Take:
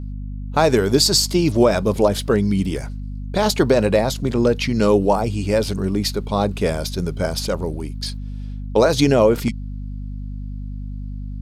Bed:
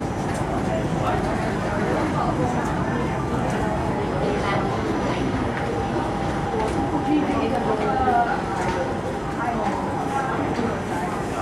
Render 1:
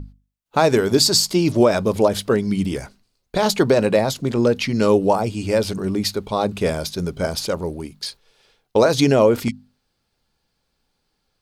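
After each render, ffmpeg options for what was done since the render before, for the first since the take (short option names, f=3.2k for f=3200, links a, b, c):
-af "bandreject=f=50:t=h:w=6,bandreject=f=100:t=h:w=6,bandreject=f=150:t=h:w=6,bandreject=f=200:t=h:w=6,bandreject=f=250:t=h:w=6"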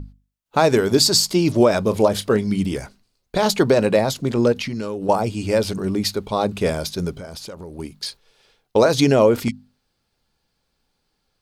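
-filter_complex "[0:a]asettb=1/sr,asplit=3[a][b][c];[a]atrim=end=1.894[d];[b]atrim=start=1.89:end=2.59,asetpts=PTS-STARTPTS,afade=t=in:d=0.004:c=qsin,afade=t=out:st=0.696:d=0.004:c=qsin,asplit=2[e][f];[f]adelay=28,volume=-13dB[g];[e][g]amix=inputs=2:normalize=0,atrim=end_sample=30870[h];[c]atrim=start=2.586[i];[d][h]acrossfade=d=0.004:c1=hsin:c2=qsin[j];[j][i]acrossfade=d=0.004:c1=qsin:c2=hsin,asettb=1/sr,asplit=3[k][l][m];[k]atrim=end=4.524[n];[l]atrim=start=4.52:end=5.09,asetpts=PTS-STARTPTS,afade=t=in:d=0.004:c=qsin,afade=t=out:st=0.566:d=0.004:c=qsin,acompressor=threshold=-22dB:ratio=16:attack=3.2:release=140:knee=1:detection=peak[o];[m]atrim=start=5.086[p];[n][o]acrossfade=d=0.004:c1=hsin:c2=qsin[q];[q][p]acrossfade=d=0.004:c1=qsin:c2=hsin,asettb=1/sr,asplit=3[r][s][t];[r]atrim=end=7.144[u];[s]atrim=start=7.14:end=7.79,asetpts=PTS-STARTPTS,afade=t=in:d=0.004:c=qsin,afade=t=out:st=0.646:d=0.004:c=qsin,acompressor=threshold=-31dB:ratio=10:attack=3.2:release=140:knee=1:detection=peak[v];[t]atrim=start=7.786[w];[u][v]acrossfade=d=0.004:c1=hsin:c2=qsin[x];[x][w]acrossfade=d=0.004:c1=qsin:c2=hsin"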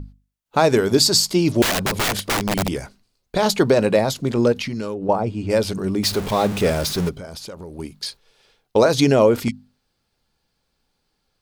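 -filter_complex "[0:a]asettb=1/sr,asplit=3[a][b][c];[a]atrim=end=1.624[d];[b]atrim=start=1.62:end=2.69,asetpts=PTS-STARTPTS,afade=t=in:d=0.004:c=qsin,afade=t=out:st=1.066:d=0.004:c=qsin,aeval=exprs='(mod(5.96*val(0)+1,2)-1)/5.96':c=same[e];[c]atrim=start=2.686[f];[d][e]acrossfade=d=0.004:c1=hsin:c2=qsin[g];[g][f]acrossfade=d=0.004:c1=qsin:c2=hsin,asplit=3[h][i][j];[h]afade=t=out:st=4.93:d=0.02[k];[i]lowpass=f=1.3k:p=1,afade=t=in:st=4.93:d=0.02,afade=t=out:st=5.49:d=0.02[l];[j]afade=t=in:st=5.49:d=0.02[m];[k][l][m]amix=inputs=3:normalize=0,asettb=1/sr,asplit=3[n][o][p];[n]atrim=end=6.034[q];[o]atrim=start=6.03:end=7.09,asetpts=PTS-STARTPTS,afade=t=in:d=0.004:c=qsin,afade=t=out:st=1.056:d=0.004:c=qsin,aeval=exprs='val(0)+0.5*0.0631*sgn(val(0))':c=same[r];[p]atrim=start=7.086[s];[q][r]acrossfade=d=0.004:c1=hsin:c2=qsin[t];[t][s]acrossfade=d=0.004:c1=qsin:c2=hsin"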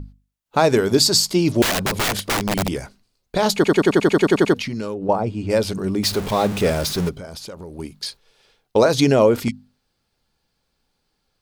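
-filter_complex "[0:a]asplit=12[a][b][c][d][e][f][g][h][i][j][k][l];[a]atrim=end=3.642[m];[b]atrim=start=3.548:end=3.642[n];[c]atrim=start=3.548:end=3.642[o];[d]atrim=start=3.548:end=3.642[p];[e]atrim=start=3.548:end=3.642[q];[f]atrim=start=3.548:end=3.642[r];[g]atrim=start=3.548:end=3.642[s];[h]atrim=start=3.548:end=3.642[t];[i]atrim=start=3.548:end=3.642[u];[j]atrim=start=3.548:end=3.642[v];[k]atrim=start=3.548:end=3.642[w];[l]atrim=start=4.538[x];[m][n]acrossfade=d=0.004:c1=hsin:c2=hsin[y];[y][o]acrossfade=d=0.004:c1=hsin:c2=hsin[z];[z][p]acrossfade=d=0.004:c1=hsin:c2=hsin[aa];[aa][q]acrossfade=d=0.004:c1=hsin:c2=hsin[ab];[ab][r]acrossfade=d=0.004:c1=hsin:c2=hsin[ac];[ac][s]acrossfade=d=0.004:c1=hsin:c2=hsin[ad];[ad][t]acrossfade=d=0.004:c1=hsin:c2=hsin[ae];[ae][u]acrossfade=d=0.004:c1=hsin:c2=hsin[af];[af][v]acrossfade=d=0.004:c1=hsin:c2=hsin[ag];[ag][w]acrossfade=d=0.004:c1=hsin:c2=hsin[ah];[ah][x]acrossfade=d=0.004:c1=hsin:c2=hsin"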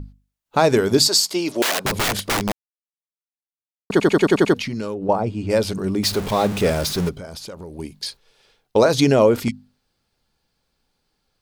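-filter_complex "[0:a]asettb=1/sr,asplit=3[a][b][c];[a]atrim=end=1.084[d];[b]atrim=start=1.08:end=1.85,asetpts=PTS-STARTPTS,afade=t=in:d=0.004:c=qsin,afade=t=out:st=0.766:d=0.004:c=qsin,highpass=390[e];[c]atrim=start=1.846[f];[d][e]acrossfade=d=0.004:c1=hsin:c2=qsin[g];[g][f]acrossfade=d=0.004:c1=qsin:c2=hsin,asettb=1/sr,asplit=3[h][i][j];[h]atrim=end=7.684[k];[i]atrim=start=7.68:end=8.08,asetpts=PTS-STARTPTS,afade=t=in:d=0.004:c=qsin,afade=t=out:st=0.396:d=0.004:c=qsin,equalizer=f=1.3k:w=6.6:g=-12[l];[j]atrim=start=8.076[m];[k][l]acrossfade=d=0.004:c1=hsin:c2=qsin[n];[n][m]acrossfade=d=0.004:c1=qsin:c2=hsin,asplit=3[o][p][q];[o]atrim=end=2.52,asetpts=PTS-STARTPTS,afade=t=out:st=2.516:d=0.004:c=hsin[r];[p]atrim=start=2.52:end=3.9,asetpts=PTS-STARTPTS,volume=0[s];[q]atrim=start=3.9,asetpts=PTS-STARTPTS,afade=t=in:d=0.004:c=hsin[t];[r][s][t]concat=n=3:v=0:a=1"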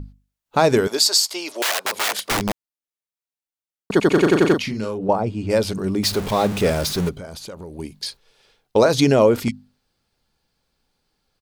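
-filter_complex "[0:a]asettb=1/sr,asplit=3[a][b][c];[a]atrim=end=0.874[d];[b]atrim=start=0.87:end=2.3,asetpts=PTS-STARTPTS,afade=t=in:d=0.004:c=qsin,afade=t=out:st=1.426:d=0.004:c=qsin,highpass=580[e];[c]atrim=start=2.296[f];[d][e]acrossfade=d=0.004:c1=hsin:c2=qsin[g];[g][f]acrossfade=d=0.004:c1=qsin:c2=hsin,asplit=3[h][i][j];[h]afade=t=out:st=4.1:d=0.02[k];[i]asplit=2[l][m];[m]adelay=37,volume=-6dB[n];[l][n]amix=inputs=2:normalize=0,afade=t=in:st=4.1:d=0.02,afade=t=out:st=5.09:d=0.02[o];[j]afade=t=in:st=5.09:d=0.02[p];[k][o][p]amix=inputs=3:normalize=0,asettb=1/sr,asplit=3[q][r][s];[q]atrim=end=6.984[t];[r]atrim=start=6.98:end=7.84,asetpts=PTS-STARTPTS,afade=t=in:d=0.004:c=qsin,afade=t=out:st=0.856:d=0.004:c=qsin,bandreject=f=5.2k:w=12[u];[s]atrim=start=7.836[v];[t][u]acrossfade=d=0.004:c1=hsin:c2=qsin[w];[w][v]acrossfade=d=0.004:c1=qsin:c2=hsin"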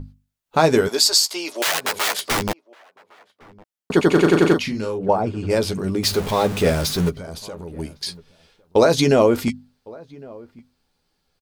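-filter_complex "[0:a]asplit=2[a][b];[b]adelay=12,volume=-8dB[c];[a][c]amix=inputs=2:normalize=0,asplit=2[d][e];[e]adelay=1108,volume=-23dB,highshelf=f=4k:g=-24.9[f];[d][f]amix=inputs=2:normalize=0"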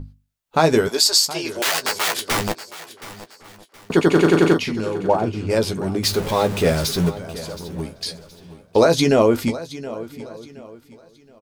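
-filter_complex "[0:a]asplit=2[a][b];[b]adelay=18,volume=-13dB[c];[a][c]amix=inputs=2:normalize=0,aecho=1:1:721|1442|2163:0.158|0.0507|0.0162"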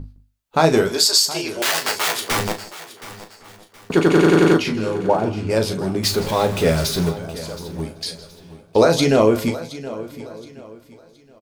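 -filter_complex "[0:a]asplit=2[a][b];[b]adelay=37,volume=-9dB[c];[a][c]amix=inputs=2:normalize=0,aecho=1:1:161:0.126"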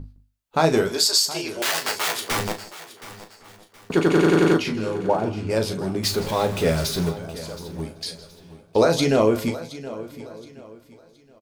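-af "volume=-3.5dB"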